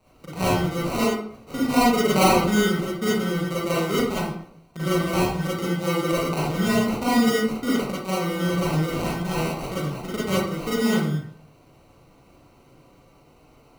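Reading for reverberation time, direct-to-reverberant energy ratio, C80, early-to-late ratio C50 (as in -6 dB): 0.65 s, -9.0 dB, 3.5 dB, -2.0 dB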